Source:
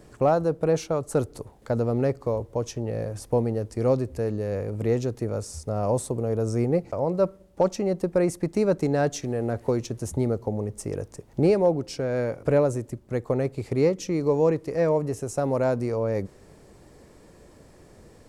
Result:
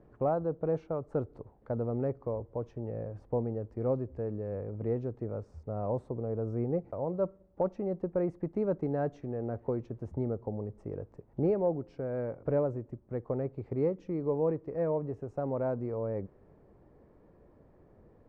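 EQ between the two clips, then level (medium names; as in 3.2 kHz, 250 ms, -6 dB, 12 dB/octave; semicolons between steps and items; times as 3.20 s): low-pass 1.2 kHz 12 dB/octave; -8.0 dB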